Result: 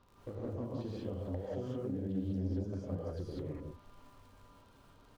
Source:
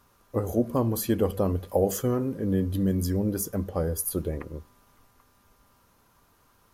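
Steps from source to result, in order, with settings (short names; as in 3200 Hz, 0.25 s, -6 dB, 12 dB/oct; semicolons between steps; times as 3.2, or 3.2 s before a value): LPF 4000 Hz 24 dB/oct; bell 1800 Hz -7.5 dB 1.4 oct; tempo 1.3×; compressor 12:1, threshold -39 dBFS, peak gain reduction 20.5 dB; overloaded stage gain 32.5 dB; harmonic-percussive split percussive -3 dB; crackle 39/s -53 dBFS; non-linear reverb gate 0.22 s rising, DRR -5.5 dB; Doppler distortion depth 0.27 ms; gain -1 dB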